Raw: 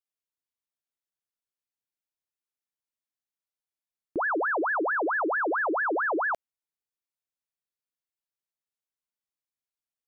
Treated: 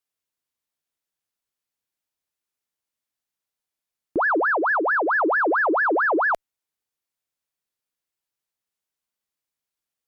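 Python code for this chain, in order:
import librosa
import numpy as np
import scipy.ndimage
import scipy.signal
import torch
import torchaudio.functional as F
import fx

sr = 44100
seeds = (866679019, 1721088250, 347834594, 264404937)

y = fx.highpass(x, sr, hz=340.0, slope=6, at=(4.4, 5.1))
y = fx.cheby_harmonics(y, sr, harmonics=(3,), levels_db=(-41,), full_scale_db=-23.5)
y = y * 10.0 ** (6.5 / 20.0)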